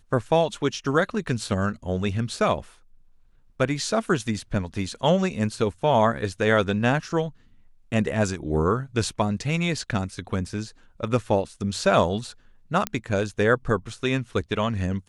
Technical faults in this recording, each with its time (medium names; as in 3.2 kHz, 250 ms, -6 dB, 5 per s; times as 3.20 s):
12.87 s: pop -9 dBFS